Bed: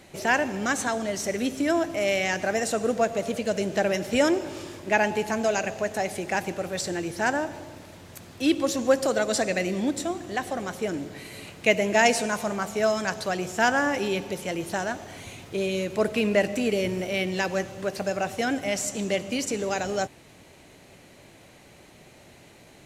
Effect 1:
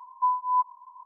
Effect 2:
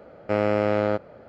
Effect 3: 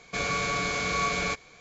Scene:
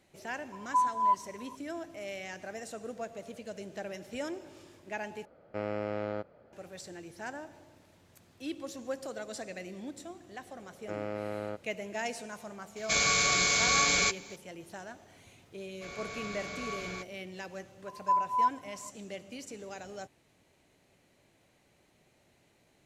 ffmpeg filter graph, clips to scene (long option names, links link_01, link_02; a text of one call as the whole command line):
ffmpeg -i bed.wav -i cue0.wav -i cue1.wav -i cue2.wav -filter_complex "[1:a]asplit=2[link_01][link_02];[2:a]asplit=2[link_03][link_04];[3:a]asplit=2[link_05][link_06];[0:a]volume=-16dB[link_07];[link_05]crystalizer=i=5:c=0[link_08];[link_06]dynaudnorm=framelen=160:gausssize=5:maxgain=4dB[link_09];[link_02]aecho=1:1:4.8:0.82[link_10];[link_07]asplit=2[link_11][link_12];[link_11]atrim=end=5.254[link_13];[link_03]atrim=end=1.28,asetpts=PTS-STARTPTS,volume=-12.5dB[link_14];[link_12]atrim=start=6.526[link_15];[link_01]atrim=end=1.05,asetpts=PTS-STARTPTS,volume=-2.5dB,afade=type=in:duration=0.004:curve=hsin,afade=type=out:start_time=1.046:duration=0.004:curve=hsin,adelay=520[link_16];[link_04]atrim=end=1.28,asetpts=PTS-STARTPTS,volume=-14.5dB,afade=type=in:duration=0.004:curve=hsin,afade=type=out:start_time=1.276:duration=0.004:curve=hsin,adelay=10590[link_17];[link_08]atrim=end=1.6,asetpts=PTS-STARTPTS,volume=-4dB,afade=type=in:duration=0.004:curve=hsin,afade=type=out:start_time=1.596:duration=0.004:curve=hsin,adelay=12760[link_18];[link_09]atrim=end=1.6,asetpts=PTS-STARTPTS,volume=-16.5dB,afade=type=in:duration=0.004:curve=hsin,afade=type=out:start_time=1.596:duration=0.004:curve=hsin,adelay=15680[link_19];[link_10]atrim=end=1.05,asetpts=PTS-STARTPTS,volume=-6dB,afade=type=in:duration=0.004:curve=hsin,afade=type=out:start_time=1.046:duration=0.004:curve=hsin,adelay=17860[link_20];[link_13][link_14]acrossfade=duration=0.004:curve1=hsin:curve2=hsin[link_21];[link_21][link_15]acrossfade=duration=0.004:curve1=hsin:curve2=hsin[link_22];[link_22][link_16][link_17][link_18][link_19][link_20]amix=inputs=6:normalize=0" out.wav